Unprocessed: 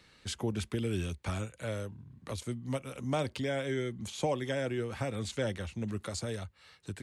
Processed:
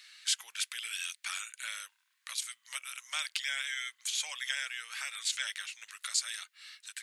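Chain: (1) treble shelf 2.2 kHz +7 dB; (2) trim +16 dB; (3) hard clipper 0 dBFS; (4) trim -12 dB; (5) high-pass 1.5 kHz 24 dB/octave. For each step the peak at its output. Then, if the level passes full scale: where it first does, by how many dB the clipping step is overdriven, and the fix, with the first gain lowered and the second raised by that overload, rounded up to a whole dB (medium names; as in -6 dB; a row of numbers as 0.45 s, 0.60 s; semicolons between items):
-18.0 dBFS, -2.0 dBFS, -2.0 dBFS, -14.0 dBFS, -15.5 dBFS; nothing clips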